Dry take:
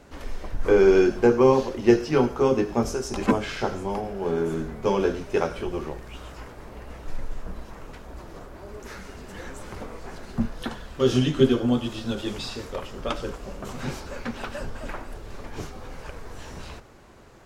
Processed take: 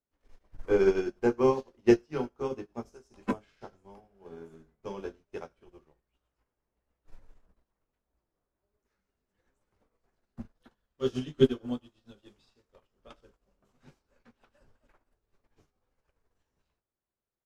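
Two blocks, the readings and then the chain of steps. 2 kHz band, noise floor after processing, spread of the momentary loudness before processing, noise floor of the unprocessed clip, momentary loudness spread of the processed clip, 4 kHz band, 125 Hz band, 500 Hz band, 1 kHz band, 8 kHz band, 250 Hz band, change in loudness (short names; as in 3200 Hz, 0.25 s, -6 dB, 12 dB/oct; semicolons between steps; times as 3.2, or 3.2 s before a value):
-11.0 dB, under -85 dBFS, 22 LU, -44 dBFS, 23 LU, -12.5 dB, -11.5 dB, -8.0 dB, -11.0 dB, under -15 dB, -8.5 dB, -5.0 dB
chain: doubler 20 ms -12 dB; upward expander 2.5:1, over -39 dBFS; gain -3 dB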